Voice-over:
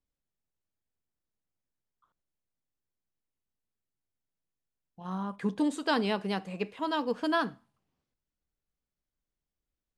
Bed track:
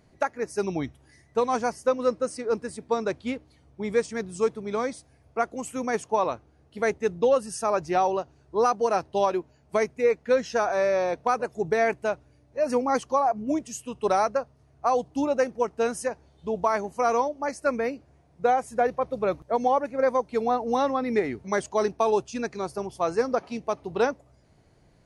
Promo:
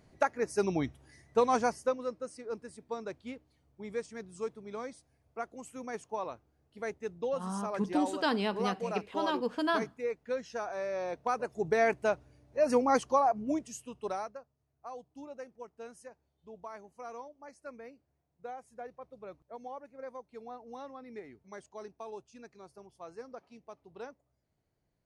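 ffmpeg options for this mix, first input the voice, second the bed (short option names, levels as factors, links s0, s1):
-filter_complex "[0:a]adelay=2350,volume=0.794[s0];[1:a]volume=2.66,afade=t=out:st=1.63:d=0.42:silence=0.298538,afade=t=in:st=10.88:d=1.25:silence=0.298538,afade=t=out:st=12.99:d=1.4:silence=0.112202[s1];[s0][s1]amix=inputs=2:normalize=0"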